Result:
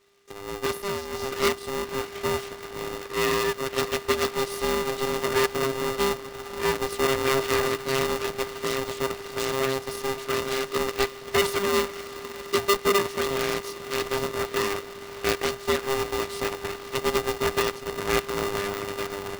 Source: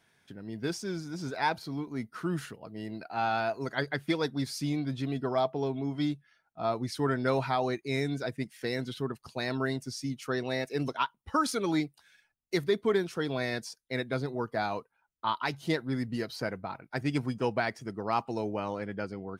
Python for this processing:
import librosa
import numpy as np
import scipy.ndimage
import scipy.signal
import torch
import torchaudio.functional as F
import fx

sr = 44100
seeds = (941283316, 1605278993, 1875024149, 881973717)

p1 = fx.high_shelf_res(x, sr, hz=6500.0, db=-8.0, q=1.5)
p2 = fx.notch(p1, sr, hz=510.0, q=12.0)
p3 = p2 + fx.echo_diffused(p2, sr, ms=556, feedback_pct=73, wet_db=-14.5, dry=0)
p4 = np.abs(p3)
p5 = p4 * np.sign(np.sin(2.0 * np.pi * 400.0 * np.arange(len(p4)) / sr))
y = p5 * 10.0 ** (5.0 / 20.0)